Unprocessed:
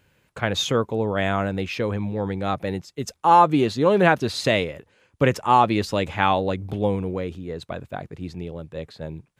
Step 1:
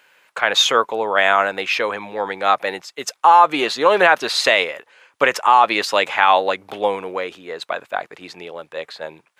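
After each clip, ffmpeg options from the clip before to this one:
ffmpeg -i in.wav -af "highpass=900,highshelf=frequency=3400:gain=-8,alimiter=level_in=15.5dB:limit=-1dB:release=50:level=0:latency=1,volume=-1dB" out.wav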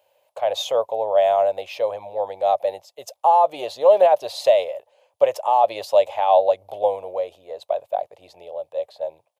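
ffmpeg -i in.wav -af "firequalizer=gain_entry='entry(100,0);entry(160,-16);entry(260,-19);entry(410,-11);entry(580,7);entry(1400,-27);entry(3000,-13);entry(7800,-12);entry(12000,-4)':delay=0.05:min_phase=1" out.wav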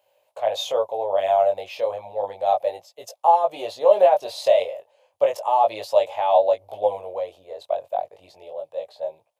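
ffmpeg -i in.wav -af "flanger=delay=17.5:depth=4.3:speed=0.32,volume=1.5dB" out.wav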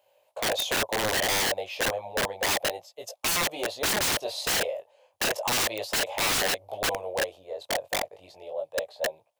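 ffmpeg -i in.wav -af "aeval=exprs='(mod(10.6*val(0)+1,2)-1)/10.6':channel_layout=same" out.wav

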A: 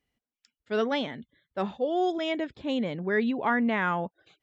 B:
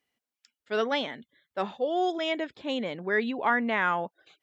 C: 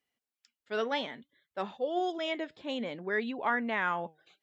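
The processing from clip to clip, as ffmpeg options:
ffmpeg -i in.wav -af "highpass=frequency=480:poles=1,volume=2.5dB" out.wav
ffmpeg -i in.wav -af "flanger=delay=0.6:depth=6:regen=85:speed=0.6:shape=triangular" out.wav

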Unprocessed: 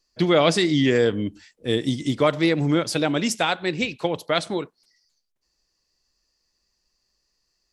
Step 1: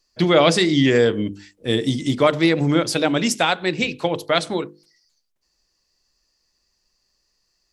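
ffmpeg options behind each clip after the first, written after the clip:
ffmpeg -i in.wav -af "bandreject=frequency=50:width_type=h:width=6,bandreject=frequency=100:width_type=h:width=6,bandreject=frequency=150:width_type=h:width=6,bandreject=frequency=200:width_type=h:width=6,bandreject=frequency=250:width_type=h:width=6,bandreject=frequency=300:width_type=h:width=6,bandreject=frequency=350:width_type=h:width=6,bandreject=frequency=400:width_type=h:width=6,bandreject=frequency=450:width_type=h:width=6,bandreject=frequency=500:width_type=h:width=6,volume=3.5dB" out.wav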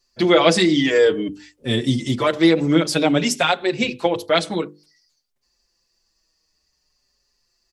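ffmpeg -i in.wav -filter_complex "[0:a]asplit=2[link_01][link_02];[link_02]adelay=5.3,afreqshift=-0.54[link_03];[link_01][link_03]amix=inputs=2:normalize=1,volume=3.5dB" out.wav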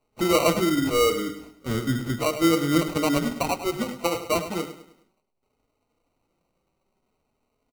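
ffmpeg -i in.wav -filter_complex "[0:a]acrossover=split=470|1500[link_01][link_02][link_03];[link_03]acompressor=threshold=-33dB:ratio=6[link_04];[link_01][link_02][link_04]amix=inputs=3:normalize=0,acrusher=samples=26:mix=1:aa=0.000001,aecho=1:1:103|206|309|412:0.251|0.1|0.0402|0.0161,volume=-5.5dB" out.wav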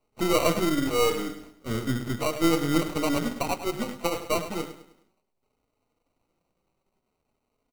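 ffmpeg -i in.wav -af "aeval=exprs='if(lt(val(0),0),0.447*val(0),val(0))':channel_layout=same" out.wav

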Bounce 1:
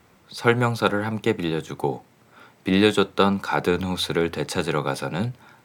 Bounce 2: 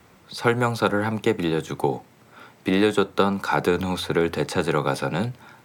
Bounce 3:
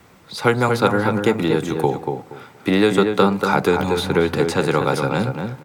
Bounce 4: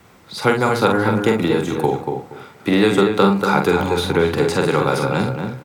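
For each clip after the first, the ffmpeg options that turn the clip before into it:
ffmpeg -i in.wav -filter_complex "[0:a]acrossover=split=290|2100|4500[link_01][link_02][link_03][link_04];[link_01]acompressor=threshold=-29dB:ratio=4[link_05];[link_02]acompressor=threshold=-20dB:ratio=4[link_06];[link_03]acompressor=threshold=-41dB:ratio=4[link_07];[link_04]acompressor=threshold=-40dB:ratio=4[link_08];[link_05][link_06][link_07][link_08]amix=inputs=4:normalize=0,volume=3dB" out.wav
ffmpeg -i in.wav -filter_complex "[0:a]asplit=2[link_01][link_02];[link_02]adelay=236,lowpass=frequency=1900:poles=1,volume=-5dB,asplit=2[link_03][link_04];[link_04]adelay=236,lowpass=frequency=1900:poles=1,volume=0.22,asplit=2[link_05][link_06];[link_06]adelay=236,lowpass=frequency=1900:poles=1,volume=0.22[link_07];[link_01][link_03][link_05][link_07]amix=inputs=4:normalize=0,volume=3.5dB" out.wav
ffmpeg -i in.wav -filter_complex "[0:a]asplit=2[link_01][link_02];[link_02]adelay=46,volume=-5dB[link_03];[link_01][link_03]amix=inputs=2:normalize=0" out.wav

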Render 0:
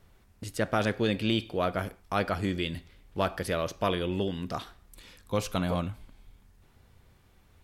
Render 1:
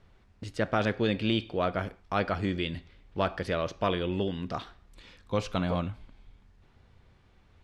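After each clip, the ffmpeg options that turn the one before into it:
ffmpeg -i in.wav -af "lowpass=4700" out.wav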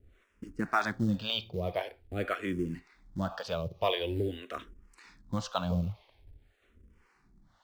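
ffmpeg -i in.wav -filter_complex "[0:a]acrossover=split=430[link_01][link_02];[link_01]aeval=exprs='val(0)*(1-1/2+1/2*cos(2*PI*1.9*n/s))':channel_layout=same[link_03];[link_02]aeval=exprs='val(0)*(1-1/2-1/2*cos(2*PI*1.9*n/s))':channel_layout=same[link_04];[link_03][link_04]amix=inputs=2:normalize=0,asplit=2[link_05][link_06];[link_06]acrusher=bits=4:mode=log:mix=0:aa=0.000001,volume=-7dB[link_07];[link_05][link_07]amix=inputs=2:normalize=0,asplit=2[link_08][link_09];[link_09]afreqshift=-0.46[link_10];[link_08][link_10]amix=inputs=2:normalize=1,volume=1.5dB" out.wav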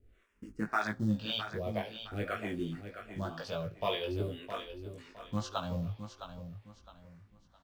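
ffmpeg -i in.wav -filter_complex "[0:a]asplit=2[link_01][link_02];[link_02]adelay=19,volume=-3dB[link_03];[link_01][link_03]amix=inputs=2:normalize=0,aecho=1:1:662|1324|1986:0.316|0.098|0.0304,volume=-5dB" out.wav

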